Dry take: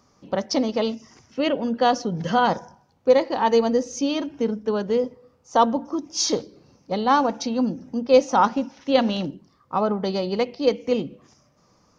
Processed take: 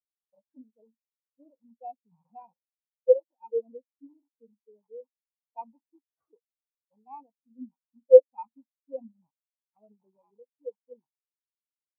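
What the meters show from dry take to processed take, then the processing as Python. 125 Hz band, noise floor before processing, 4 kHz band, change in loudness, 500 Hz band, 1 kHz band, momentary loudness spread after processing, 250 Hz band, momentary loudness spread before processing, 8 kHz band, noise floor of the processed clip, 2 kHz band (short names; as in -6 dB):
under -35 dB, -61 dBFS, under -40 dB, +1.0 dB, -4.5 dB, -23.5 dB, 24 LU, -29.0 dB, 10 LU, n/a, under -85 dBFS, under -40 dB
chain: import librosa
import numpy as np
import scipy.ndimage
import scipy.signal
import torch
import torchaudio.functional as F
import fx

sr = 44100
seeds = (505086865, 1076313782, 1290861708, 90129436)

y = fx.rattle_buzz(x, sr, strikes_db=-35.0, level_db=-9.0)
y = fx.sample_hold(y, sr, seeds[0], rate_hz=3400.0, jitter_pct=0)
y = fx.spectral_expand(y, sr, expansion=4.0)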